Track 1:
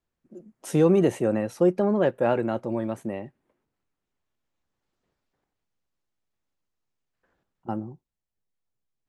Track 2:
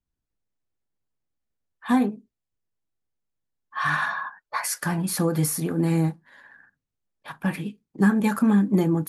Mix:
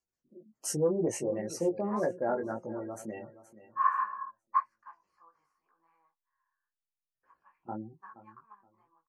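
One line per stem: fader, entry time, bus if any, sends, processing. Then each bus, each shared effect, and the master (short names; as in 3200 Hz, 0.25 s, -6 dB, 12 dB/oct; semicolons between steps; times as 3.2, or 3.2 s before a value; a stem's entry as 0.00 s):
-3.0 dB, 0.00 s, no send, echo send -15.5 dB, bell 6000 Hz +8 dB 1.5 oct; spectral gate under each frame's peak -20 dB strong; tilt +2 dB/oct
+3.0 dB, 0.00 s, no send, no echo send, ladder band-pass 1100 Hz, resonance 85%; upward expander 2.5:1, over -38 dBFS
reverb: off
echo: feedback echo 0.473 s, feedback 22%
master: chorus 1.9 Hz, delay 18 ms, depth 2.8 ms; Butterworth band-stop 3600 Hz, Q 3.3; Doppler distortion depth 0.13 ms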